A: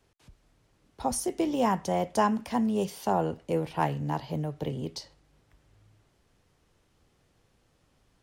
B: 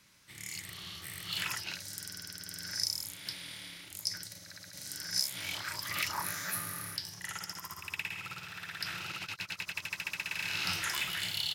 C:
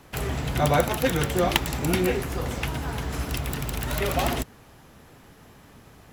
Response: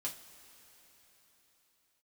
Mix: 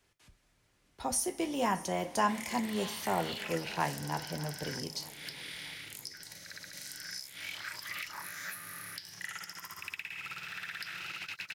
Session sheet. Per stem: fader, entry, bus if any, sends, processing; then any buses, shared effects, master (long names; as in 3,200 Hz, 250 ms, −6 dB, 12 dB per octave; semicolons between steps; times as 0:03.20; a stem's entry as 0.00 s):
−10.0 dB, 0.00 s, no bus, send −3.5 dB, echo send −16.5 dB, high-shelf EQ 3,500 Hz +9 dB
+0.5 dB, 2.00 s, bus A, no send, no echo send, high-pass filter 180 Hz 6 dB per octave; noise that follows the level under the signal 29 dB
muted
bus A: 0.0 dB, parametric band 1,000 Hz −3.5 dB 0.77 octaves; downward compressor 6 to 1, threshold −42 dBFS, peak gain reduction 16 dB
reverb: on, pre-delay 3 ms
echo: repeating echo 623 ms, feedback 52%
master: parametric band 1,900 Hz +6.5 dB 1.4 octaves